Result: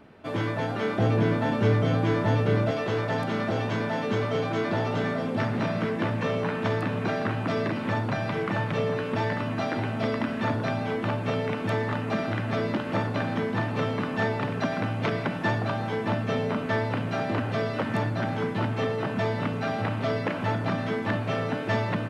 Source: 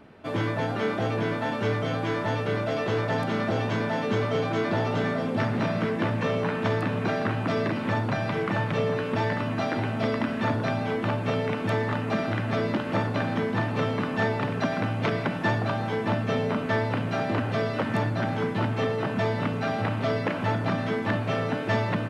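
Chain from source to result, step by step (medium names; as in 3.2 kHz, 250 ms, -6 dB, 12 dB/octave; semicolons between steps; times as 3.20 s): 0.98–2.71 s: bass shelf 380 Hz +8.5 dB; trim -1 dB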